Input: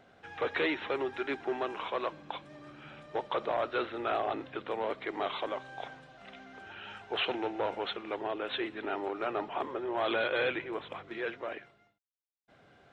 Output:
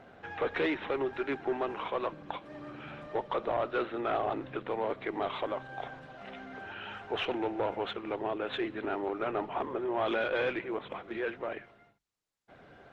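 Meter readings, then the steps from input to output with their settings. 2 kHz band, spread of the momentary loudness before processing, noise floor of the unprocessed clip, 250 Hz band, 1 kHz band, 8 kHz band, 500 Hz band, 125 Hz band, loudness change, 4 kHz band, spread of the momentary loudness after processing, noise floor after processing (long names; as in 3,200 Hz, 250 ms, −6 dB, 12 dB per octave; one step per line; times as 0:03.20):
−1.0 dB, 15 LU, −67 dBFS, +2.5 dB, +0.5 dB, can't be measured, +1.0 dB, +4.5 dB, 0.0 dB, −3.5 dB, 12 LU, −62 dBFS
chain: one-sided soft clipper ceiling −20 dBFS
low-pass filter 2,900 Hz 6 dB per octave
hum removal 49.12 Hz, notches 3
dynamic equaliser 130 Hz, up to +5 dB, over −56 dBFS, Q 0.91
in parallel at +3 dB: downward compressor 6 to 1, threshold −47 dBFS, peak gain reduction 17.5 dB
on the sum: Opus 20 kbit/s 48,000 Hz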